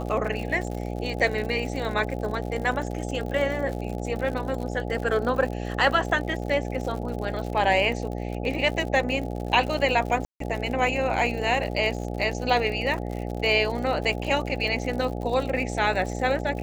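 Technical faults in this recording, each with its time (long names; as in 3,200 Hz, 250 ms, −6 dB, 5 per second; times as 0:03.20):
mains buzz 60 Hz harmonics 14 −31 dBFS
surface crackle 84 per second −32 dBFS
0:10.25–0:10.40: drop-out 153 ms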